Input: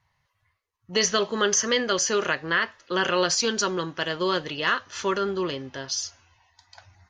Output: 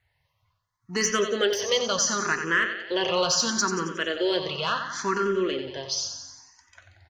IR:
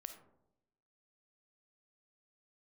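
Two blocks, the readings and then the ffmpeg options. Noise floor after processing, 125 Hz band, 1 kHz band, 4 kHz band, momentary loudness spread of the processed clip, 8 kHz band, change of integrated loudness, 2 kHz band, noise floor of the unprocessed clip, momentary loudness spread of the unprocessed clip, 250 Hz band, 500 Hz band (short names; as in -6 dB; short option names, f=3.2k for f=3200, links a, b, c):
-74 dBFS, -1.0 dB, -0.5 dB, 0.0 dB, 7 LU, -0.5 dB, -0.5 dB, -0.5 dB, -75 dBFS, 7 LU, -0.5 dB, 0.0 dB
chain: -filter_complex "[0:a]asplit=2[a][b];[b]aecho=0:1:91|182|273|364|455|546|637:0.355|0.213|0.128|0.0766|0.046|0.0276|0.0166[c];[a][c]amix=inputs=2:normalize=0,asoftclip=type=tanh:threshold=-11dB,asplit=2[d][e];[e]afreqshift=0.72[f];[d][f]amix=inputs=2:normalize=1,volume=2dB"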